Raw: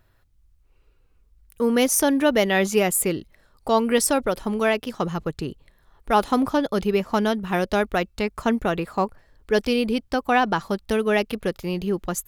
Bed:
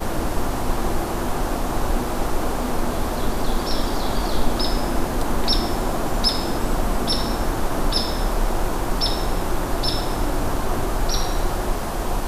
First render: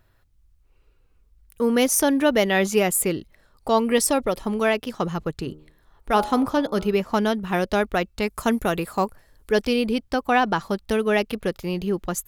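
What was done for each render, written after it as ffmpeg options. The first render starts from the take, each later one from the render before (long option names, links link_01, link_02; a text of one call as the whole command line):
ffmpeg -i in.wav -filter_complex "[0:a]asettb=1/sr,asplit=3[link_01][link_02][link_03];[link_01]atrim=end=3.784[link_04];[link_02]atrim=start=3.78:end=4.43,asetpts=PTS-STARTPTS,afade=type=in:duration=0.004:curve=qsin,afade=type=out:start_time=0.646:duration=0.004:curve=qsin,asuperstop=centerf=1500:order=4:qfactor=7[link_05];[link_03]atrim=start=4.426[link_06];[link_04][link_05]acrossfade=duration=0.004:curve1=hsin:curve2=qsin[link_07];[link_07][link_06]acrossfade=duration=0.004:curve1=qsin:curve2=hsin,asettb=1/sr,asplit=3[link_08][link_09][link_10];[link_08]atrim=end=5.374[link_11];[link_09]atrim=start=5.37:end=7.02,asetpts=PTS-STARTPTS,afade=type=in:duration=0.004:curve=qsin,afade=type=out:start_time=1.646:duration=0.004:curve=qsin,bandreject=frequency=76.29:width_type=h:width=4,bandreject=frequency=152.58:width_type=h:width=4,bandreject=frequency=228.87:width_type=h:width=4,bandreject=frequency=305.16:width_type=h:width=4,bandreject=frequency=381.45:width_type=h:width=4,bandreject=frequency=457.74:width_type=h:width=4,bandreject=frequency=534.03:width_type=h:width=4,bandreject=frequency=610.32:width_type=h:width=4,bandreject=frequency=686.61:width_type=h:width=4,bandreject=frequency=762.9:width_type=h:width=4,bandreject=frequency=839.19:width_type=h:width=4,bandreject=frequency=915.48:width_type=h:width=4,bandreject=frequency=991.77:width_type=h:width=4,bandreject=frequency=1068.06:width_type=h:width=4,bandreject=frequency=1144.35:width_type=h:width=4,bandreject=frequency=1220.64:width_type=h:width=4,bandreject=frequency=1296.93:width_type=h:width=4,bandreject=frequency=1373.22:width_type=h:width=4,bandreject=frequency=1449.51:width_type=h:width=4[link_12];[link_10]atrim=start=7.016[link_13];[link_11][link_12]acrossfade=duration=0.004:curve1=hsin:curve2=qsin[link_14];[link_14][link_13]acrossfade=duration=0.004:curve1=qsin:curve2=hsin,asettb=1/sr,asplit=3[link_15][link_16][link_17];[link_15]atrim=end=8.224[link_18];[link_16]atrim=start=8.22:end=9.52,asetpts=PTS-STARTPTS,afade=type=in:duration=0.004:curve=qsin,afade=type=out:start_time=1.296:duration=0.004:curve=qsin,equalizer=frequency=12000:width=0.56:gain=13.5[link_19];[link_17]atrim=start=9.516[link_20];[link_18][link_19]acrossfade=duration=0.004:curve1=hsin:curve2=qsin[link_21];[link_21][link_20]acrossfade=duration=0.004:curve1=qsin:curve2=hsin" out.wav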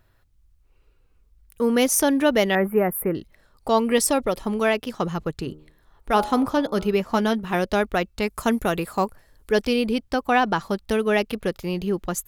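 ffmpeg -i in.wav -filter_complex "[0:a]asettb=1/sr,asplit=3[link_01][link_02][link_03];[link_01]atrim=end=2.554[link_04];[link_02]atrim=start=2.55:end=3.15,asetpts=PTS-STARTPTS,afade=type=in:duration=0.004:curve=qsin,afade=type=out:start_time=0.596:duration=0.004:curve=qsin,asuperstop=centerf=5200:order=8:qfactor=0.53[link_05];[link_03]atrim=start=3.146[link_06];[link_04][link_05]acrossfade=duration=0.004:curve1=hsin:curve2=qsin[link_07];[link_07][link_06]acrossfade=duration=0.004:curve1=qsin:curve2=hsin,asettb=1/sr,asplit=3[link_08][link_09][link_10];[link_08]atrim=end=7.084[link_11];[link_09]atrim=start=7.08:end=7.55,asetpts=PTS-STARTPTS,afade=type=in:duration=0.004:curve=qsin,afade=type=out:start_time=0.466:duration=0.004:curve=qsin,asplit=2[link_12][link_13];[link_13]adelay=13,volume=-9.5dB[link_14];[link_12][link_14]amix=inputs=2:normalize=0,atrim=end_sample=20727[link_15];[link_10]atrim=start=7.546[link_16];[link_11][link_15]acrossfade=duration=0.004:curve1=hsin:curve2=qsin[link_17];[link_17][link_16]acrossfade=duration=0.004:curve1=qsin:curve2=hsin" out.wav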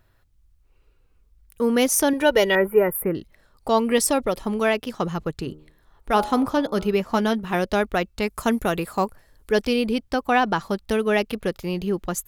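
ffmpeg -i in.wav -filter_complex "[0:a]asettb=1/sr,asplit=3[link_01][link_02][link_03];[link_01]atrim=end=2.134[link_04];[link_02]atrim=start=2.13:end=2.97,asetpts=PTS-STARTPTS,afade=type=in:duration=0.004:curve=qsin,afade=type=out:start_time=0.836:duration=0.004:curve=qsin,aecho=1:1:2.1:0.69,atrim=end_sample=37044[link_05];[link_03]atrim=start=2.966[link_06];[link_04][link_05]acrossfade=duration=0.004:curve1=hsin:curve2=qsin[link_07];[link_07][link_06]acrossfade=duration=0.004:curve1=qsin:curve2=hsin" out.wav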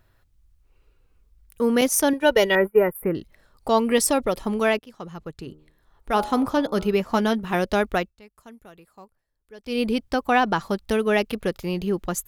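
ffmpeg -i in.wav -filter_complex "[0:a]asettb=1/sr,asplit=3[link_01][link_02][link_03];[link_01]atrim=end=1.814[link_04];[link_02]atrim=start=1.81:end=3.03,asetpts=PTS-STARTPTS,afade=type=in:duration=0.004:curve=qsin,afade=type=out:start_time=1.216:duration=0.004:curve=qsin,agate=range=-33dB:threshold=-21dB:ratio=3:release=100:detection=peak[link_05];[link_03]atrim=start=3.026[link_06];[link_04][link_05]acrossfade=duration=0.004:curve1=hsin:curve2=qsin[link_07];[link_07][link_06]acrossfade=duration=0.004:curve1=qsin:curve2=hsin,asplit=4[link_08][link_09][link_10][link_11];[link_08]atrim=end=4.79,asetpts=PTS-STARTPTS,afade=type=out:start_time=4.786:duration=0.004:curve=hsin:silence=0.149624[link_12];[link_09]atrim=start=4.79:end=8.15,asetpts=PTS-STARTPTS,afade=type=in:duration=1.82:silence=0.149624,afade=type=out:start_time=3.18:duration=0.18:silence=0.0630957[link_13];[link_10]atrim=start=8.15:end=9.64,asetpts=PTS-STARTPTS,volume=-24dB[link_14];[link_11]atrim=start=9.64,asetpts=PTS-STARTPTS,afade=type=in:duration=0.18:silence=0.0630957[link_15];[link_12][link_13][link_14][link_15]concat=n=4:v=0:a=1" out.wav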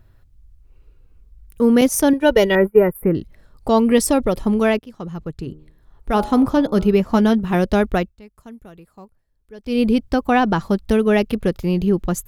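ffmpeg -i in.wav -af "lowshelf=frequency=360:gain=11.5" out.wav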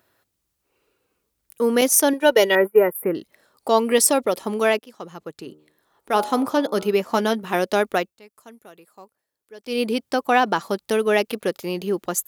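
ffmpeg -i in.wav -af "highpass=390,highshelf=frequency=5000:gain=7" out.wav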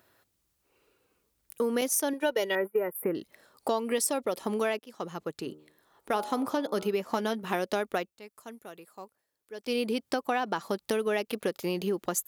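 ffmpeg -i in.wav -af "acompressor=threshold=-27dB:ratio=4" out.wav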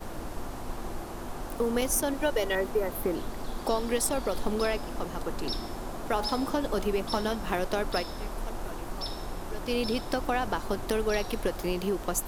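ffmpeg -i in.wav -i bed.wav -filter_complex "[1:a]volume=-14dB[link_01];[0:a][link_01]amix=inputs=2:normalize=0" out.wav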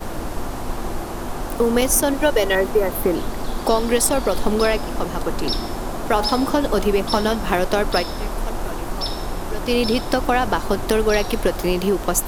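ffmpeg -i in.wav -af "volume=10dB" out.wav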